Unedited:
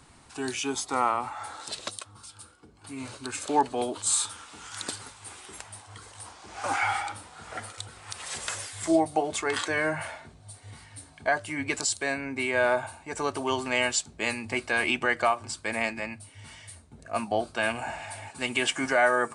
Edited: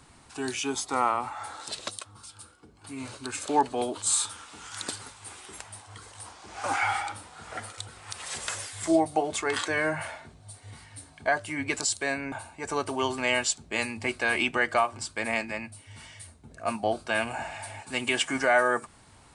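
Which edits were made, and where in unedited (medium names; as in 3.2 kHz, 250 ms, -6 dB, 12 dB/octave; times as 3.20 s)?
12.32–12.80 s: delete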